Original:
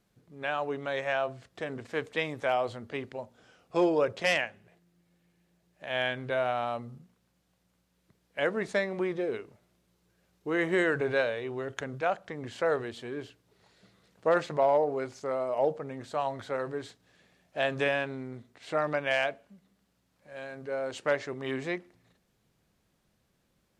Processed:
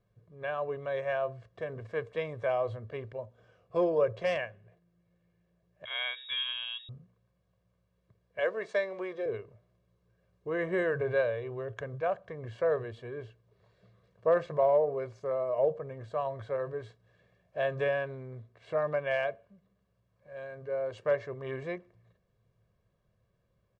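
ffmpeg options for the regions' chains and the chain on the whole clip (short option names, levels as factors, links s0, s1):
-filter_complex "[0:a]asettb=1/sr,asplit=3[s0][s1][s2];[s0]atrim=end=5.854[s3];[s1]atrim=start=5.85:end=6.89,asetpts=PTS-STARTPTS,afade=t=in:d=0.004:c=qsin,afade=t=out:st=1.036:d=0.004:c=qsin,lowpass=f=3300:t=q:w=0.5098,lowpass=f=3300:t=q:w=0.6013,lowpass=f=3300:t=q:w=0.9,lowpass=f=3300:t=q:w=2.563,afreqshift=-3900,tiltshelf=f=1200:g=-5.5[s4];[s2]atrim=start=6.886[s5];[s3][s4]acrossfade=d=0.004:c1=hsin:c2=qsin[s6];[s6][s5]acrossfade=d=0.004:c1=qsin:c2=hsin,asettb=1/sr,asplit=3[s7][s8][s9];[s7]atrim=end=8.394[s10];[s8]atrim=start=8.39:end=9.26,asetpts=PTS-STARTPTS,afade=t=in:d=0.004:c=qsin,afade=t=out:st=0.866:d=0.004:c=qsin,highpass=380,lowpass=7300,highshelf=f=3400:g=10[s11];[s9]atrim=start=9.256[s12];[s10][s11]acrossfade=d=0.004:c1=hsin:c2=qsin[s13];[s13][s12]acrossfade=d=0.004:c1=qsin:c2=hsin,lowpass=f=1100:p=1,equalizer=f=110:t=o:w=0.21:g=9.5,aecho=1:1:1.8:0.67,volume=0.75"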